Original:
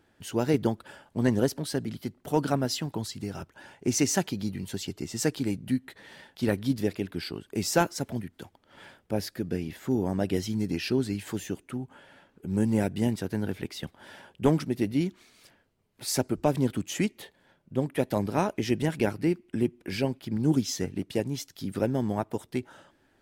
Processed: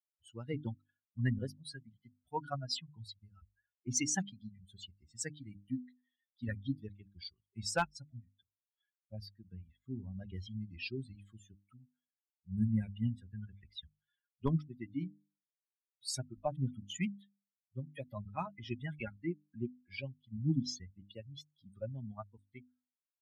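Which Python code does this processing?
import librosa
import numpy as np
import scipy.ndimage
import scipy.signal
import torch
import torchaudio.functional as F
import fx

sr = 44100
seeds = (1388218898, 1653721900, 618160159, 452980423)

y = fx.bin_expand(x, sr, power=3.0)
y = scipy.signal.sosfilt(scipy.signal.butter(4, 8700.0, 'lowpass', fs=sr, output='sos'), y)
y = fx.peak_eq(y, sr, hz=420.0, db=-11.0, octaves=1.3)
y = fx.hum_notches(y, sr, base_hz=50, count=6)
y = np.clip(y, -10.0 ** (-22.5 / 20.0), 10.0 ** (-22.5 / 20.0))
y = fx.low_shelf(y, sr, hz=210.0, db=3.5)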